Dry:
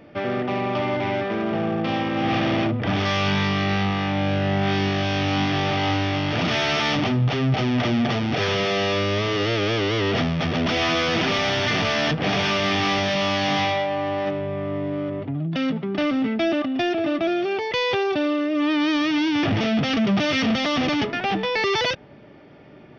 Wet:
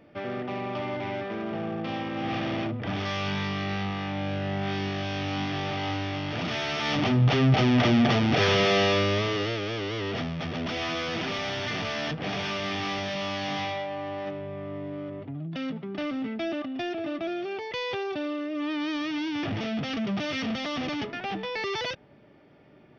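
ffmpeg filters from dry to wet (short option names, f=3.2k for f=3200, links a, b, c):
-af "volume=0.5dB,afade=t=in:st=6.78:d=0.52:silence=0.375837,afade=t=out:st=8.76:d=0.86:silence=0.334965"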